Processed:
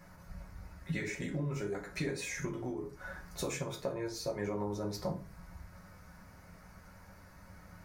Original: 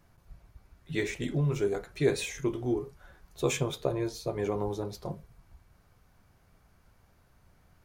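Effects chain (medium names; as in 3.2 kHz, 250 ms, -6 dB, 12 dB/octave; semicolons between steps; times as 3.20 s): FFT filter 280 Hz 0 dB, 2.1 kHz +6 dB, 3.2 kHz -6 dB, 4.9 kHz +4 dB, 8.5 kHz +1 dB; compression 6:1, threshold -41 dBFS, peak gain reduction 20.5 dB; reverberation RT60 0.35 s, pre-delay 3 ms, DRR -0.5 dB; trim +3.5 dB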